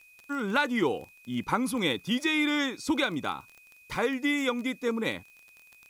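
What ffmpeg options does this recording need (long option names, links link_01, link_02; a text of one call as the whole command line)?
ffmpeg -i in.wav -af "adeclick=threshold=4,bandreject=frequency=2500:width=30,agate=range=-21dB:threshold=-49dB" out.wav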